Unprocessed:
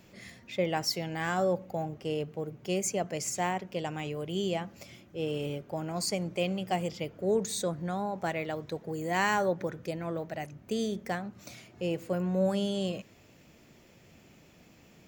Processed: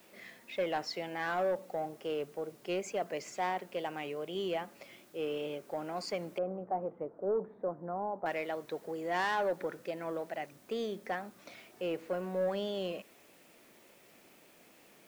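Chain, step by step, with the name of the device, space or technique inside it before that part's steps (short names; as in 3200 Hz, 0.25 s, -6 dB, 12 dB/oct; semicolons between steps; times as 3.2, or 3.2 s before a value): tape answering machine (BPF 340–3200 Hz; soft clip -25 dBFS, distortion -15 dB; wow and flutter; white noise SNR 28 dB); 6.38–8.26 inverse Chebyshev low-pass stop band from 6400 Hz, stop band 80 dB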